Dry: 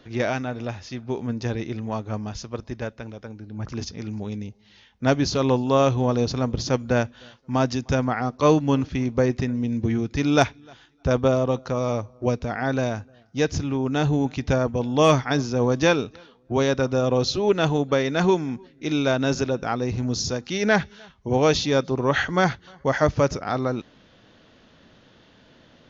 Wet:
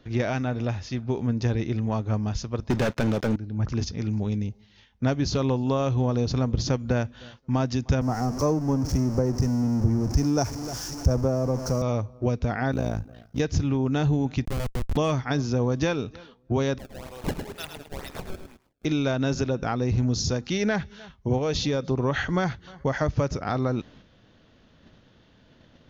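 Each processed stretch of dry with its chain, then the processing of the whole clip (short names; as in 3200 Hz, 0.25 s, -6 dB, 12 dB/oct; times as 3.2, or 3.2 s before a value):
2.7–3.36 HPF 140 Hz + sample leveller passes 5
8.01–11.82 zero-crossing step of -23 dBFS + EQ curve 890 Hz 0 dB, 3700 Hz -19 dB, 5500 Hz +8 dB, 8000 Hz -7 dB + three-band expander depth 70%
12.72–13.4 G.711 law mismatch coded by mu + dynamic EQ 2100 Hz, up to -5 dB, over -44 dBFS, Q 0.81 + AM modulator 56 Hz, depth 80%
14.45–14.97 HPF 250 Hz 24 dB/oct + compressor 2:1, threshold -31 dBFS + Schmitt trigger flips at -28 dBFS
16.78–18.85 differentiator + decimation with a swept rate 26×, swing 160% 2.1 Hz + lo-fi delay 0.106 s, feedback 35%, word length 9-bit, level -7 dB
21.38–21.89 bell 490 Hz +5 dB 0.25 oct + compressor 3:1, threshold -21 dBFS
whole clip: compressor 4:1, threshold -24 dBFS; gate -52 dBFS, range -6 dB; low shelf 160 Hz +9.5 dB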